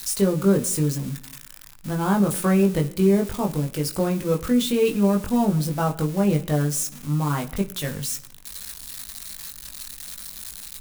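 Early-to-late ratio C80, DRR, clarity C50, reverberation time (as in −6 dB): 20.0 dB, 2.0 dB, 17.0 dB, non-exponential decay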